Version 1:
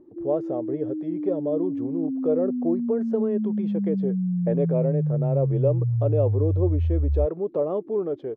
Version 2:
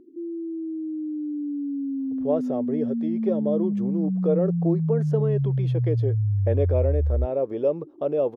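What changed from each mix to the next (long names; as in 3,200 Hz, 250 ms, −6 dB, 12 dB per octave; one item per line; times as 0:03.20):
speech: entry +2.00 s
master: remove low-pass filter 1,400 Hz 6 dB per octave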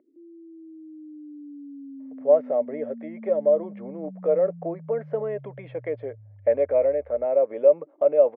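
background −5.0 dB
master: add loudspeaker in its box 340–2,400 Hz, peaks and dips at 360 Hz −10 dB, 590 Hz +10 dB, 2,100 Hz +10 dB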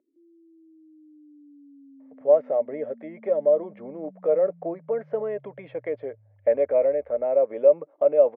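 background −10.0 dB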